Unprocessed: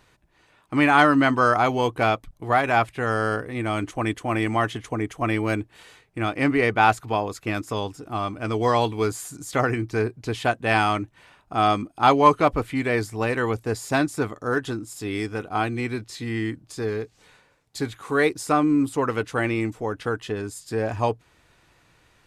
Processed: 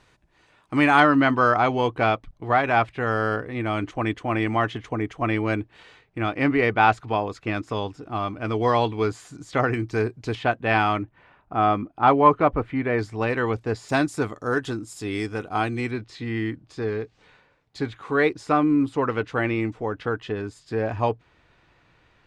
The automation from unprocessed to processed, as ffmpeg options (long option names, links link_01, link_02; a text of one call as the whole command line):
ffmpeg -i in.wav -af "asetnsamples=nb_out_samples=441:pad=0,asendcmd='1 lowpass f 4100;9.74 lowpass f 7400;10.35 lowpass f 3300;11.03 lowpass f 2000;12.99 lowpass f 4200;13.89 lowpass f 8900;15.91 lowpass f 3700',lowpass=8600" out.wav